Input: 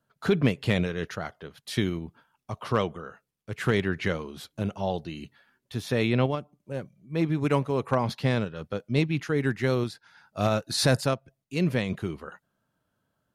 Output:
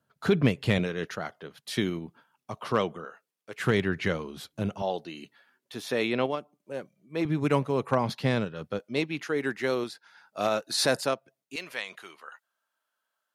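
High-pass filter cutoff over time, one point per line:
46 Hz
from 0:00.79 160 Hz
from 0:03.05 380 Hz
from 0:03.60 87 Hz
from 0:04.82 290 Hz
from 0:07.25 120 Hz
from 0:08.79 310 Hz
from 0:11.56 1,000 Hz

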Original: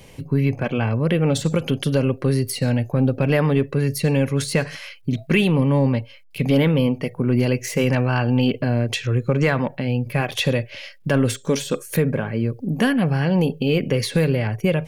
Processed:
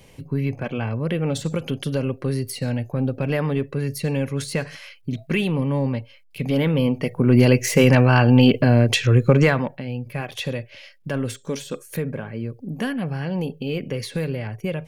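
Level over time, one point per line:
0:06.49 −4.5 dB
0:07.44 +5 dB
0:09.34 +5 dB
0:09.84 −7 dB

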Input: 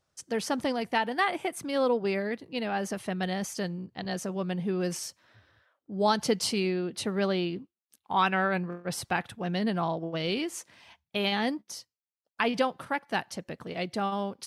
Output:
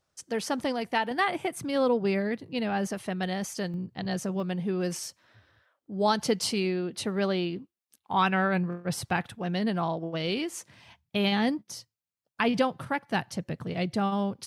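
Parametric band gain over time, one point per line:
parametric band 120 Hz 1.4 octaves
−1.5 dB
from 0:01.11 +10.5 dB
from 0:02.87 +0.5 dB
from 0:03.74 +7.5 dB
from 0:04.40 +1 dB
from 0:08.13 +8 dB
from 0:09.26 +1.5 dB
from 0:10.59 +13 dB

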